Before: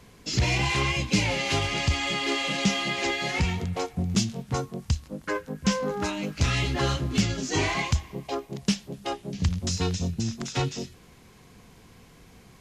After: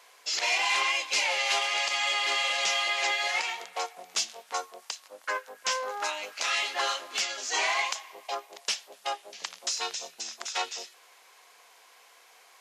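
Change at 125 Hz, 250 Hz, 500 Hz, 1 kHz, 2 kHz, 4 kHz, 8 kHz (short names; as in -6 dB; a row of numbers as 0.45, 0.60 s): under -40 dB, -27.0 dB, -6.0 dB, +1.0 dB, +1.5 dB, +1.5 dB, +1.5 dB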